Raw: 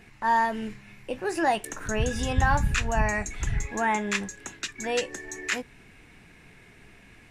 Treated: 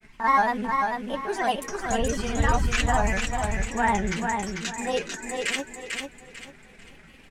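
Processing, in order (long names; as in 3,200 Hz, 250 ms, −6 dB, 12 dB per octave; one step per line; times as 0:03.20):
comb filter 4.4 ms, depth 57%
granular cloud, spray 37 ms, pitch spread up and down by 3 semitones
on a send: repeating echo 445 ms, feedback 30%, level −4.5 dB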